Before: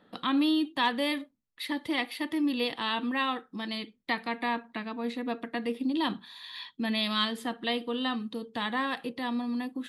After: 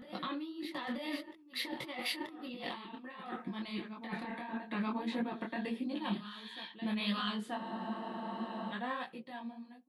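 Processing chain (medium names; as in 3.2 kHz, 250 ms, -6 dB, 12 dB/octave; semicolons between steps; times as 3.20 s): fade out at the end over 1.02 s; Doppler pass-by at 2.90 s, 10 m/s, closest 6.5 m; high-pass 310 Hz 6 dB/octave; tilt EQ -2 dB/octave; comb 5.5 ms, depth 59%; compressor with a negative ratio -45 dBFS, ratio -1; on a send: reverse echo 932 ms -12.5 dB; on the sum: spectral freeze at 7.58 s, 1.13 s; detune thickener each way 53 cents; trim +8.5 dB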